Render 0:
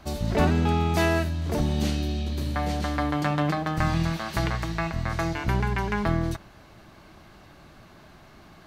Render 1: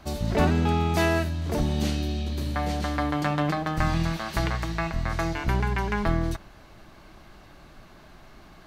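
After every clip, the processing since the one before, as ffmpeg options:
-af "asubboost=boost=2.5:cutoff=51"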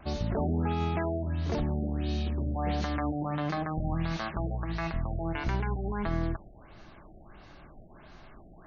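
-af "alimiter=limit=0.112:level=0:latency=1:release=98,afftfilt=real='re*lt(b*sr/1024,760*pow(7000/760,0.5+0.5*sin(2*PI*1.5*pts/sr)))':imag='im*lt(b*sr/1024,760*pow(7000/760,0.5+0.5*sin(2*PI*1.5*pts/sr)))':win_size=1024:overlap=0.75,volume=0.841"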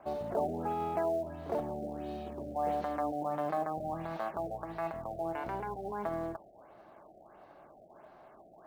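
-filter_complex "[0:a]bandpass=f=660:t=q:w=1.7:csg=0,asplit=2[s0][s1];[s1]acrusher=bits=5:mode=log:mix=0:aa=0.000001,volume=0.501[s2];[s0][s2]amix=inputs=2:normalize=0"

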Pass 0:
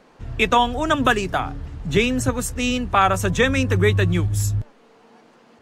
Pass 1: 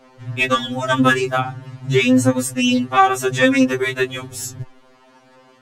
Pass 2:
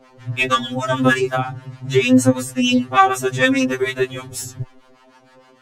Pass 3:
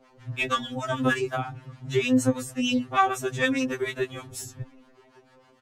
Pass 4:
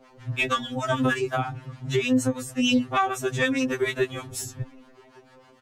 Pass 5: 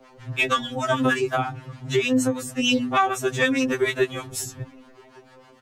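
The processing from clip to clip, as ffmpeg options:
-af "acontrast=25,afftfilt=real='re*2.45*eq(mod(b,6),0)':imag='im*2.45*eq(mod(b,6),0)':win_size=2048:overlap=0.75"
-filter_complex "[0:a]acrossover=split=770[s0][s1];[s0]aeval=exprs='val(0)*(1-0.7/2+0.7/2*cos(2*PI*6.5*n/s))':c=same[s2];[s1]aeval=exprs='val(0)*(1-0.7/2-0.7/2*cos(2*PI*6.5*n/s))':c=same[s3];[s2][s3]amix=inputs=2:normalize=0,volume=1.41"
-filter_complex "[0:a]asplit=2[s0][s1];[s1]adelay=1166,volume=0.0355,highshelf=f=4000:g=-26.2[s2];[s0][s2]amix=inputs=2:normalize=0,volume=0.376"
-af "alimiter=limit=0.141:level=0:latency=1:release=401,volume=1.58"
-filter_complex "[0:a]bandreject=f=50:t=h:w=6,bandreject=f=100:t=h:w=6,bandreject=f=150:t=h:w=6,bandreject=f=200:t=h:w=6,bandreject=f=250:t=h:w=6,acrossover=split=130|1100|6300[s0][s1][s2][s3];[s0]acompressor=threshold=0.00447:ratio=6[s4];[s4][s1][s2][s3]amix=inputs=4:normalize=0,volume=1.41"

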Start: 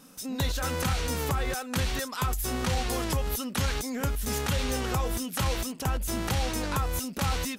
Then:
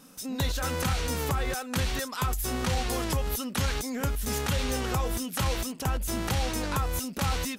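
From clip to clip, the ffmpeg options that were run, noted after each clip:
-af anull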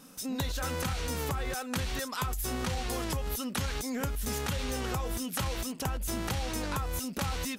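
-af "acompressor=threshold=0.0355:ratio=6"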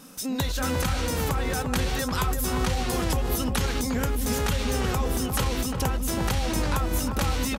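-filter_complex "[0:a]asplit=2[s0][s1];[s1]adelay=352,lowpass=f=930:p=1,volume=0.668,asplit=2[s2][s3];[s3]adelay=352,lowpass=f=930:p=1,volume=0.55,asplit=2[s4][s5];[s5]adelay=352,lowpass=f=930:p=1,volume=0.55,asplit=2[s6][s7];[s7]adelay=352,lowpass=f=930:p=1,volume=0.55,asplit=2[s8][s9];[s9]adelay=352,lowpass=f=930:p=1,volume=0.55,asplit=2[s10][s11];[s11]adelay=352,lowpass=f=930:p=1,volume=0.55,asplit=2[s12][s13];[s13]adelay=352,lowpass=f=930:p=1,volume=0.55,asplit=2[s14][s15];[s15]adelay=352,lowpass=f=930:p=1,volume=0.55[s16];[s0][s2][s4][s6][s8][s10][s12][s14][s16]amix=inputs=9:normalize=0,volume=1.88"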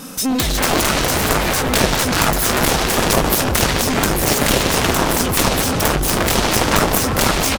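-af "aecho=1:1:240|480|720|960:0.422|0.16|0.0609|0.0231,aeval=exprs='0.282*(cos(1*acos(clip(val(0)/0.282,-1,1)))-cos(1*PI/2))+0.126*(cos(7*acos(clip(val(0)/0.282,-1,1)))-cos(7*PI/2))':c=same,volume=2.51"

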